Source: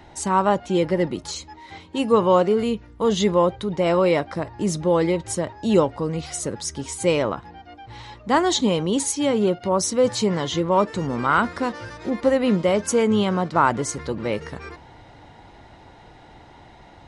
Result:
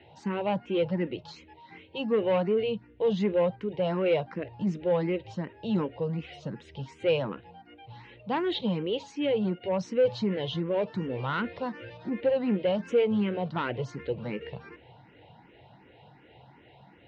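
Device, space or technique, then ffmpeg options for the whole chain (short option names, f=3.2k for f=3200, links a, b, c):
barber-pole phaser into a guitar amplifier: -filter_complex "[0:a]asplit=2[a][b];[b]afreqshift=2.7[c];[a][c]amix=inputs=2:normalize=1,asoftclip=type=tanh:threshold=-15dB,highpass=100,equalizer=f=130:t=q:w=4:g=8,equalizer=f=190:t=q:w=4:g=4,equalizer=f=480:t=q:w=4:g=6,equalizer=f=1.2k:t=q:w=4:g=-7,equalizer=f=2.7k:t=q:w=4:g=8,lowpass=f=3.8k:w=0.5412,lowpass=f=3.8k:w=1.3066,volume=-6dB"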